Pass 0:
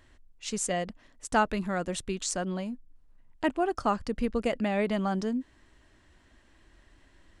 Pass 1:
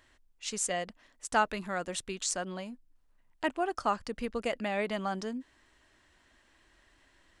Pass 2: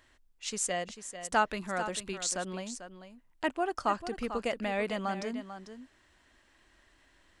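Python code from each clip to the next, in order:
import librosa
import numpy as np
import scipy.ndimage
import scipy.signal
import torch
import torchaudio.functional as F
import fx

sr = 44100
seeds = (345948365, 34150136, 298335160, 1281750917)

y1 = fx.low_shelf(x, sr, hz=390.0, db=-10.5)
y2 = y1 + 10.0 ** (-11.0 / 20.0) * np.pad(y1, (int(444 * sr / 1000.0), 0))[:len(y1)]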